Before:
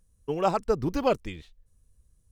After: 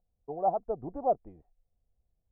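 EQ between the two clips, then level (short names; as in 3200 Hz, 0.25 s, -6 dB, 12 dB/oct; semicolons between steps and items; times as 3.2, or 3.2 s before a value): ladder low-pass 760 Hz, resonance 80%; bell 70 Hz -3 dB 1.9 oct; 0.0 dB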